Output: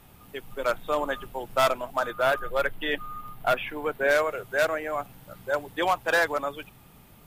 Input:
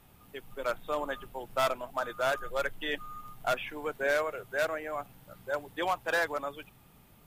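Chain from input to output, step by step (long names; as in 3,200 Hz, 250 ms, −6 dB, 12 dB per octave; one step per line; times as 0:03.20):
0:02.10–0:04.11: parametric band 6,600 Hz −9.5 dB 0.96 octaves
level +6 dB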